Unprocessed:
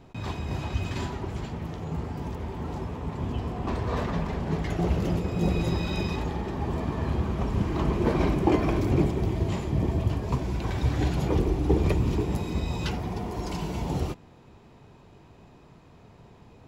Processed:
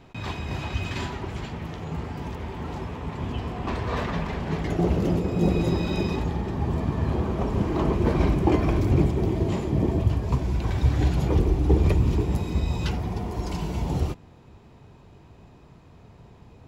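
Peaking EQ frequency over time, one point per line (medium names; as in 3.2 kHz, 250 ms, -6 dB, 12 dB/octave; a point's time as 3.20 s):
peaking EQ +5.5 dB 2.1 oct
2.4 kHz
from 4.63 s 320 Hz
from 6.19 s 110 Hz
from 7.10 s 480 Hz
from 7.95 s 72 Hz
from 9.18 s 340 Hz
from 10.02 s 64 Hz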